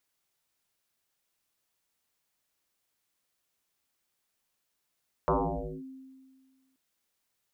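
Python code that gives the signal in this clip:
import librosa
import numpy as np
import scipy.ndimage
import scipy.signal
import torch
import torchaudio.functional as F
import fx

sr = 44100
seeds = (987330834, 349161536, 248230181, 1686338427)

y = fx.fm2(sr, length_s=1.48, level_db=-21.0, carrier_hz=264.0, ratio=0.41, index=8.8, index_s=0.55, decay_s=1.74, shape='linear')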